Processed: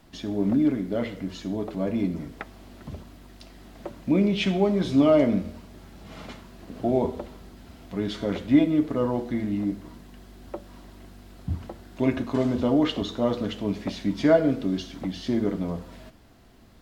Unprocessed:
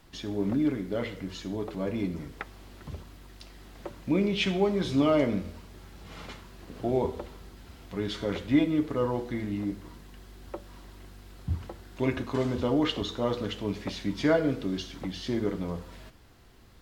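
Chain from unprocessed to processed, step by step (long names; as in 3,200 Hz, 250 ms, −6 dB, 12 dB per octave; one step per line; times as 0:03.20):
hollow resonant body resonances 230/640 Hz, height 7 dB, ringing for 20 ms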